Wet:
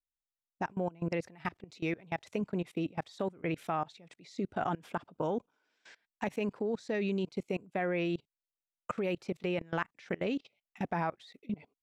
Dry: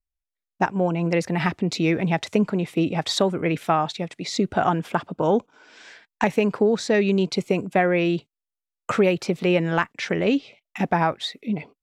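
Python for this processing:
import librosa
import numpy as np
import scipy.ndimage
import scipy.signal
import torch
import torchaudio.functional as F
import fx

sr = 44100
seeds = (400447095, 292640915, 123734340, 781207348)

y = fx.peak_eq(x, sr, hz=210.0, db=-4.0, octaves=1.6, at=(1.3, 2.41))
y = fx.level_steps(y, sr, step_db=23)
y = y * librosa.db_to_amplitude(-8.5)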